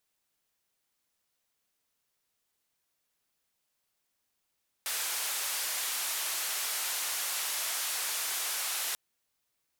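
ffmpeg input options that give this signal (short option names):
-f lavfi -i "anoisesrc=c=white:d=4.09:r=44100:seed=1,highpass=f=750,lowpass=f=14000,volume=-26.4dB"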